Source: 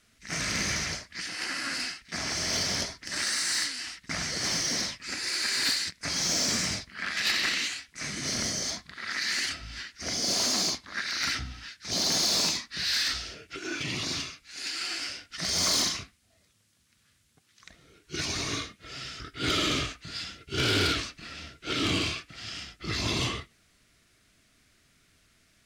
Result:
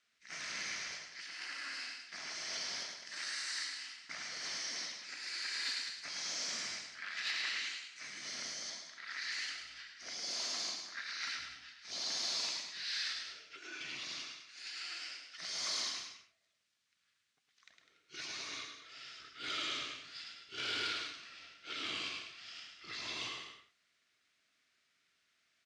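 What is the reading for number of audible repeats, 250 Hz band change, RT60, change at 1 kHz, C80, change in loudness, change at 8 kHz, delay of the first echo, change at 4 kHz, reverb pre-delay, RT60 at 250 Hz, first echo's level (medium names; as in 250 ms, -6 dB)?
3, -22.0 dB, no reverb, -11.5 dB, no reverb, -11.0 dB, -13.5 dB, 107 ms, -10.5 dB, no reverb, no reverb, -5.5 dB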